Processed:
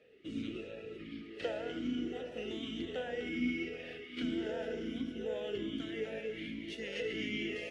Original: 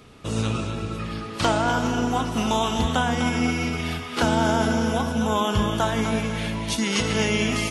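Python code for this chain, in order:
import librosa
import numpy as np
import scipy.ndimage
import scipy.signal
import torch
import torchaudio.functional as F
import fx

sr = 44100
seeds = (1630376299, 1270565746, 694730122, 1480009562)

p1 = fx.octave_divider(x, sr, octaves=2, level_db=1.0)
p2 = np.clip(p1, -10.0 ** (-18.0 / 20.0), 10.0 ** (-18.0 / 20.0))
p3 = p1 + F.gain(torch.from_numpy(p2), -4.5).numpy()
p4 = fx.vowel_sweep(p3, sr, vowels='e-i', hz=1.3)
y = F.gain(torch.from_numpy(p4), -6.5).numpy()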